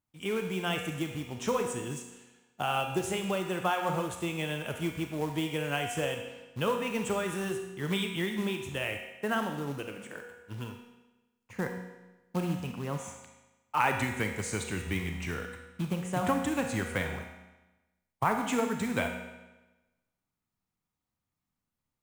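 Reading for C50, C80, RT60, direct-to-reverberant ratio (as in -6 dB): 5.5 dB, 7.5 dB, 1.1 s, 3.5 dB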